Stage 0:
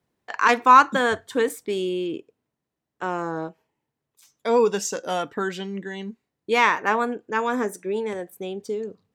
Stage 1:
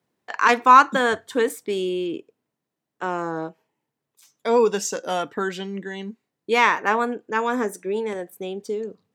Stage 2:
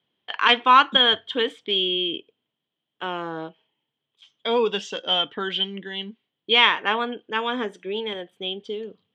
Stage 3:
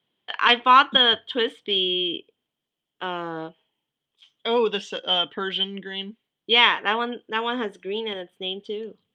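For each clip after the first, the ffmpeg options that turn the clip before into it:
-af "highpass=130,volume=1dB"
-af "lowpass=f=3.2k:t=q:w=15,volume=-4dB"
-ar 48000 -c:a libopus -b:a 48k

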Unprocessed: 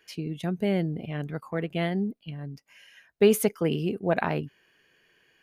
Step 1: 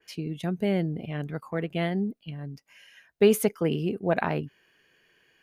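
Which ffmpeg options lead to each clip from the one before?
-af "adynamicequalizer=threshold=0.00891:dfrequency=2500:dqfactor=0.7:tfrequency=2500:tqfactor=0.7:attack=5:release=100:ratio=0.375:range=2:mode=cutabove:tftype=highshelf"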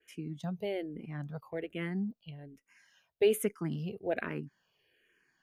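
-filter_complex "[0:a]asplit=2[a][b];[b]afreqshift=-1.2[c];[a][c]amix=inputs=2:normalize=1,volume=-5.5dB"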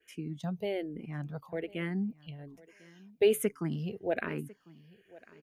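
-af "aecho=1:1:1049|2098:0.0794|0.0143,volume=1.5dB"

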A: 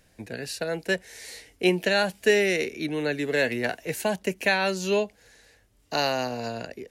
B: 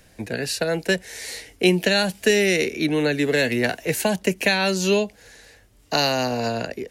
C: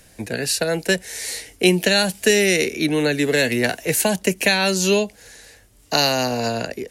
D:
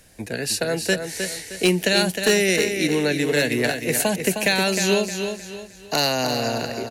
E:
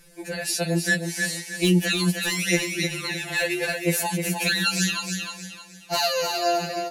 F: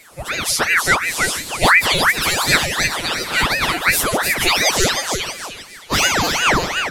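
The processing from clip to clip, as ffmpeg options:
-filter_complex "[0:a]acrossover=split=290|3000[a][b][c];[b]acompressor=threshold=-28dB:ratio=6[d];[a][d][c]amix=inputs=3:normalize=0,volume=8dB"
-af "equalizer=f=10k:w=0.61:g=7,volume=1.5dB"
-filter_complex "[0:a]aeval=exprs='0.422*(abs(mod(val(0)/0.422+3,4)-2)-1)':c=same,asplit=2[a][b];[b]aecho=0:1:310|620|930|1240:0.447|0.161|0.0579|0.0208[c];[a][c]amix=inputs=2:normalize=0,volume=-2.5dB"
-af "alimiter=limit=-12dB:level=0:latency=1:release=86,afftfilt=real='re*2.83*eq(mod(b,8),0)':imag='im*2.83*eq(mod(b,8),0)':win_size=2048:overlap=0.75,volume=2dB"
-filter_complex "[0:a]asplit=2[a][b];[b]asoftclip=type=tanh:threshold=-18.5dB,volume=-5.5dB[c];[a][c]amix=inputs=2:normalize=0,aeval=exprs='val(0)*sin(2*PI*1200*n/s+1200*0.85/2.8*sin(2*PI*2.8*n/s))':c=same,volume=7dB"

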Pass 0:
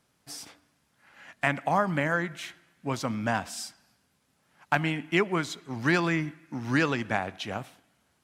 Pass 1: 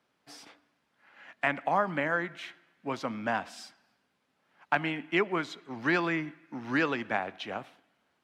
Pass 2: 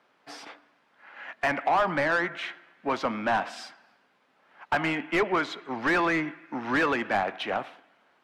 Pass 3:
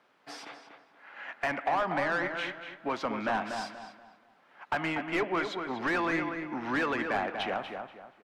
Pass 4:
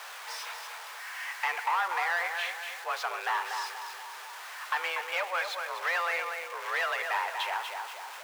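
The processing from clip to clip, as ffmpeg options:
-filter_complex "[0:a]acrossover=split=210 4300:gain=0.224 1 0.2[a][b][c];[a][b][c]amix=inputs=3:normalize=0,volume=-1.5dB"
-filter_complex "[0:a]asplit=2[a][b];[b]highpass=f=720:p=1,volume=23dB,asoftclip=type=tanh:threshold=-10dB[c];[a][c]amix=inputs=2:normalize=0,lowpass=f=1.5k:p=1,volume=-6dB,volume=-3dB"
-filter_complex "[0:a]asplit=2[a][b];[b]acompressor=threshold=-32dB:ratio=6,volume=3dB[c];[a][c]amix=inputs=2:normalize=0,asplit=2[d][e];[e]adelay=240,lowpass=f=2.4k:p=1,volume=-6dB,asplit=2[f][g];[g]adelay=240,lowpass=f=2.4k:p=1,volume=0.33,asplit=2[h][i];[i]adelay=240,lowpass=f=2.4k:p=1,volume=0.33,asplit=2[j][k];[k]adelay=240,lowpass=f=2.4k:p=1,volume=0.33[l];[d][f][h][j][l]amix=inputs=5:normalize=0,volume=-8.5dB"
-af "aeval=exprs='val(0)+0.5*0.0141*sgn(val(0))':c=same,highpass=570,afreqshift=180"

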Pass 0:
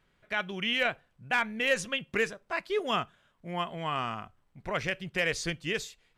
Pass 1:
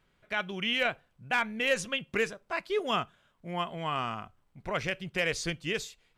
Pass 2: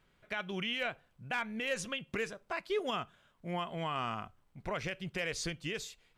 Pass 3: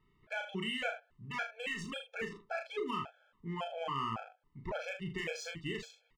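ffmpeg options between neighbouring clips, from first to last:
-af "equalizer=f=1.8k:t=o:w=0.23:g=-3"
-af "alimiter=level_in=1dB:limit=-24dB:level=0:latency=1:release=176,volume=-1dB"
-af "adynamicsmooth=sensitivity=7:basefreq=3.8k,aecho=1:1:36|78:0.596|0.251,afftfilt=real='re*gt(sin(2*PI*1.8*pts/sr)*(1-2*mod(floor(b*sr/1024/440),2)),0)':imag='im*gt(sin(2*PI*1.8*pts/sr)*(1-2*mod(floor(b*sr/1024/440),2)),0)':win_size=1024:overlap=0.75"

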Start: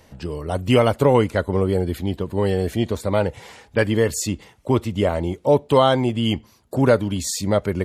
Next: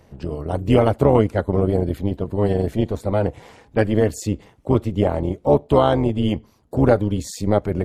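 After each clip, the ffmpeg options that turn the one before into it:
-af "tiltshelf=f=1.2k:g=5,tremolo=f=210:d=0.71"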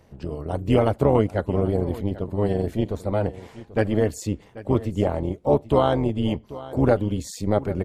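-af "aecho=1:1:788:0.141,volume=-3.5dB"

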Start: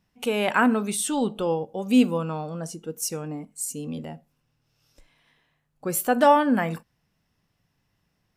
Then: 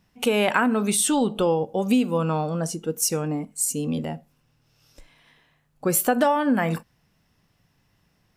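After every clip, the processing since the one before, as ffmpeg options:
-af "acompressor=threshold=-23dB:ratio=12,volume=6.5dB"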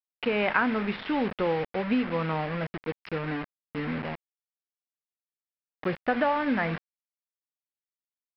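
-af "aresample=11025,acrusher=bits=4:mix=0:aa=0.000001,aresample=44100,lowpass=f=2.1k:t=q:w=1.8,volume=-6dB"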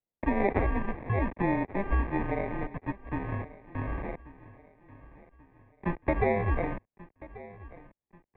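-af "acrusher=samples=28:mix=1:aa=0.000001,aecho=1:1:1136|2272|3408:0.112|0.0471|0.0198,highpass=f=180:t=q:w=0.5412,highpass=f=180:t=q:w=1.307,lowpass=f=2.4k:t=q:w=0.5176,lowpass=f=2.4k:t=q:w=0.7071,lowpass=f=2.4k:t=q:w=1.932,afreqshift=-190"

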